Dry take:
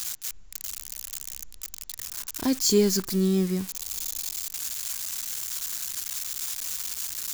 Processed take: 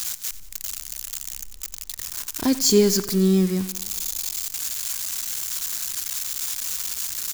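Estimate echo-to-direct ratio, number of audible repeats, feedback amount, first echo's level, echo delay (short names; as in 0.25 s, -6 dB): -15.0 dB, 4, 56%, -16.5 dB, 90 ms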